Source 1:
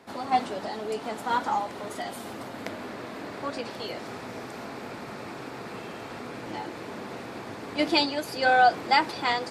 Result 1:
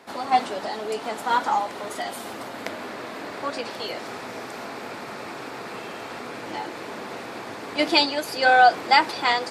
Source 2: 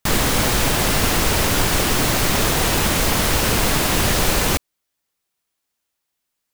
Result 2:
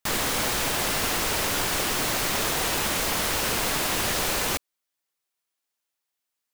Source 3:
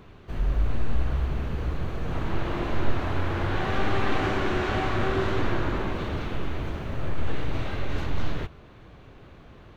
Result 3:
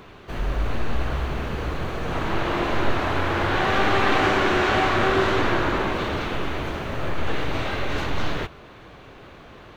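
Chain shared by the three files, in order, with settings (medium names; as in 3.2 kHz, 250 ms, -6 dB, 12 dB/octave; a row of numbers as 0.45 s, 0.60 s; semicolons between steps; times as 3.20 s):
bass shelf 250 Hz -10.5 dB; normalise loudness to -24 LUFS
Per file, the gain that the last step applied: +5.0 dB, -5.5 dB, +9.0 dB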